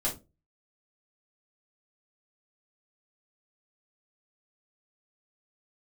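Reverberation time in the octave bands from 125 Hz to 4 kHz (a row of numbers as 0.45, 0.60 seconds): 0.45, 0.35, 0.30, 0.20, 0.20, 0.20 seconds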